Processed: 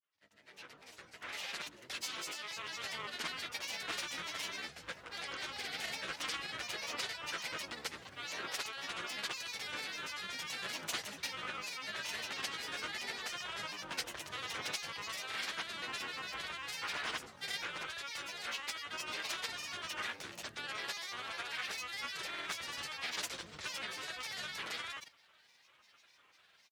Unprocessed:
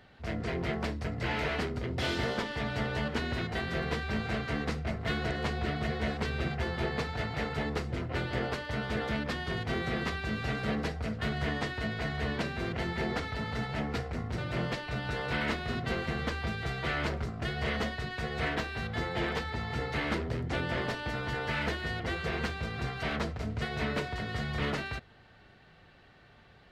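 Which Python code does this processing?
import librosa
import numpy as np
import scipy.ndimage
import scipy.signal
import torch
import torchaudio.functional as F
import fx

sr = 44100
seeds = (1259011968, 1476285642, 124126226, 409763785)

y = fx.fade_in_head(x, sr, length_s=4.39)
y = np.diff(y, prepend=0.0)
y = fx.rider(y, sr, range_db=5, speed_s=0.5)
y = fx.granulator(y, sr, seeds[0], grain_ms=100.0, per_s=20.0, spray_ms=100.0, spread_st=7)
y = y * 10.0 ** (9.0 / 20.0)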